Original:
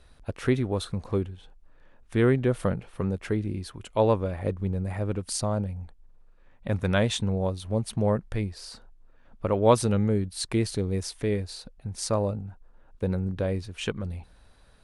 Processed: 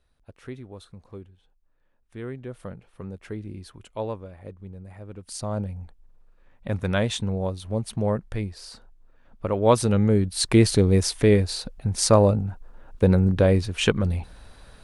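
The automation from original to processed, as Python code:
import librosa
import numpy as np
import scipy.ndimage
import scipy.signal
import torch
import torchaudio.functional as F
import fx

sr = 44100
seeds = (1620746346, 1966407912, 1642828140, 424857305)

y = fx.gain(x, sr, db=fx.line((2.21, -14.0), (3.77, -4.5), (4.29, -12.0), (5.08, -12.0), (5.58, 0.0), (9.55, 0.0), (10.65, 9.5)))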